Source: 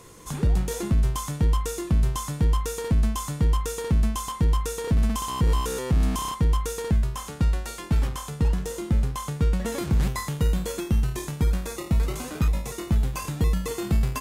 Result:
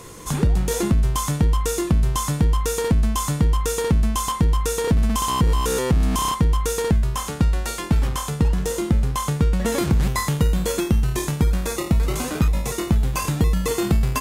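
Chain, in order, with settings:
downward compressor, threshold −23 dBFS, peak gain reduction 6 dB
level +8 dB

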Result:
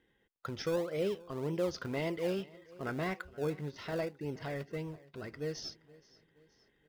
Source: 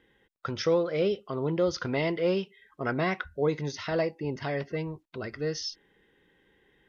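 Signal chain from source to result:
0:03.19–0:03.76: high-frequency loss of the air 280 metres
repeating echo 473 ms, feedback 50%, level −22 dB
in parallel at −11.5 dB: sample-and-hold swept by an LFO 30×, swing 100% 1.8 Hz
on the sum: level −8.5 dB

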